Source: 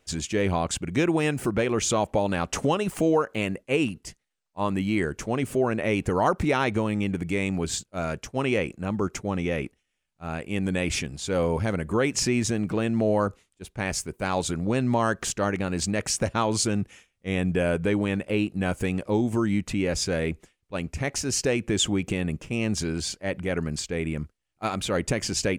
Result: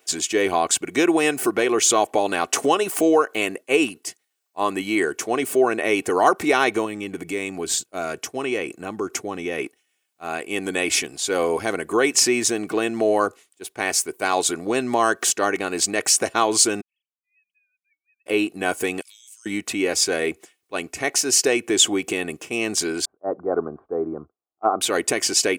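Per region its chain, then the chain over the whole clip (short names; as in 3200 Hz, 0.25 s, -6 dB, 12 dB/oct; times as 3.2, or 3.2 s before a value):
6.85–9.59 HPF 63 Hz + low shelf 200 Hz +7.5 dB + compressor 2:1, threshold -28 dBFS
16.81–18.26 sine-wave speech + inverse Chebyshev high-pass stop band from 1100 Hz, stop band 80 dB
19.01–19.46 inverse Chebyshev high-pass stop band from 770 Hz, stop band 60 dB + bell 7400 Hz +6 dB 1.4 oct + compressor, threshold -53 dBFS
23.05–24.81 Chebyshev low-pass 1300 Hz, order 5 + bell 590 Hz +3.5 dB 1.6 oct + three-band expander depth 70%
whole clip: HPF 330 Hz 12 dB/oct; high shelf 10000 Hz +12 dB; comb 2.7 ms, depth 46%; gain +5.5 dB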